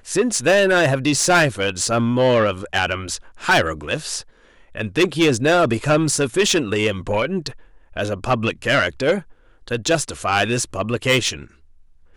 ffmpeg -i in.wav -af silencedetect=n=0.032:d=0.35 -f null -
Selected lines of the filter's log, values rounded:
silence_start: 4.21
silence_end: 4.75 | silence_duration: 0.54
silence_start: 7.51
silence_end: 7.97 | silence_duration: 0.45
silence_start: 9.20
silence_end: 9.68 | silence_duration: 0.47
silence_start: 11.44
silence_end: 12.16 | silence_duration: 0.72